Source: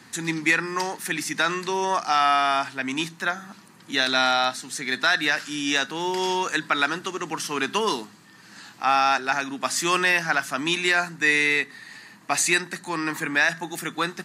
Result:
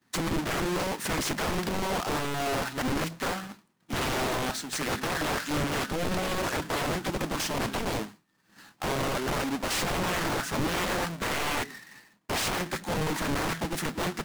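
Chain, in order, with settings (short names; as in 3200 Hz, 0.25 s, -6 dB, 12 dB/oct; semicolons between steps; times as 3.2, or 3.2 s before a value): half-waves squared off; expander -32 dBFS; wrapped overs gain 22.5 dB; Doppler distortion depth 0.98 ms; gain -2 dB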